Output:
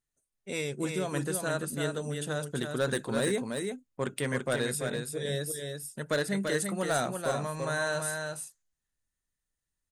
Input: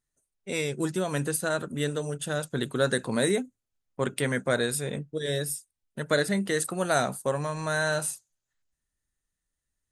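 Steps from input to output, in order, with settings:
gain into a clipping stage and back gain 17.5 dB
on a send: single-tap delay 338 ms −5 dB
on the sum: level −4 dB

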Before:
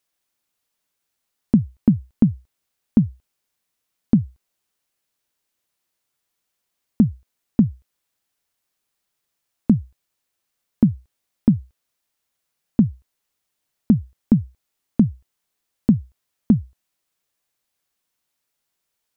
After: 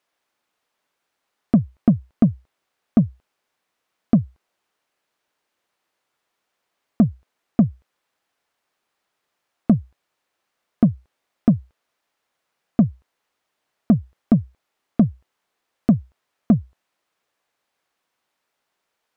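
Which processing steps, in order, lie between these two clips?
mid-hump overdrive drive 19 dB, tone 1,000 Hz, clips at −4 dBFS

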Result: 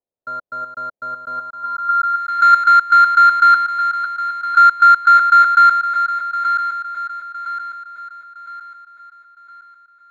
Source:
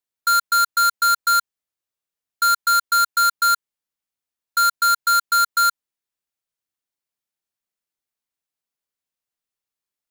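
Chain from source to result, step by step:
feedback delay that plays each chunk backwards 506 ms, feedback 63%, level −8.5 dB
low-pass filter sweep 600 Hz → 1,900 Hz, 0:01.30–0:02.29
level +3.5 dB

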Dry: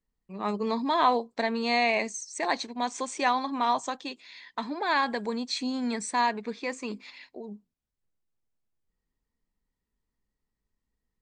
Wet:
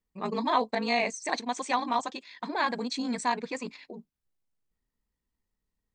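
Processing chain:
time stretch by overlap-add 0.53×, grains 37 ms

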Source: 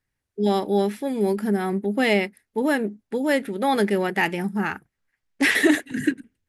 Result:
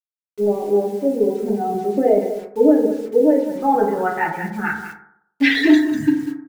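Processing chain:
spectral dynamics exaggerated over time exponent 1.5
in parallel at +1 dB: brickwall limiter −18 dBFS, peak gain reduction 9 dB
on the sum: reverb reduction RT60 0.54 s
soft clipping −9.5 dBFS, distortion −21 dB
0:03.30–0:03.74: parametric band 440 Hz −13 dB 0.42 octaves
on a send: single-tap delay 195 ms −11 dB
on the sum: low-pass filter sweep 600 Hz → 5,600 Hz, 0:03.20–0:06.02
bit reduction 7 bits
dynamic equaliser 1,100 Hz, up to −6 dB, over −38 dBFS, Q 2.7
feedback delay network reverb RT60 0.69 s, low-frequency decay 0.85×, high-frequency decay 0.25×, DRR −2 dB
level −4 dB

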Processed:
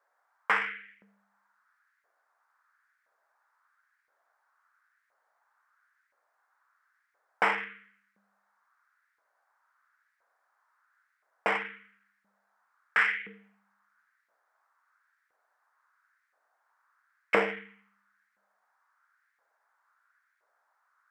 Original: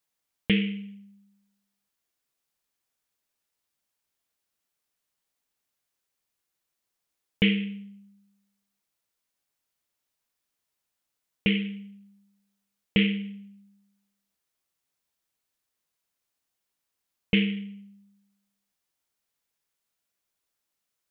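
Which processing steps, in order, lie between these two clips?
mid-hump overdrive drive 20 dB, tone 2,100 Hz, clips at −9 dBFS
auto-filter high-pass saw up 0.98 Hz 520–2,100 Hz
high shelf with overshoot 2,100 Hz −11 dB, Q 3

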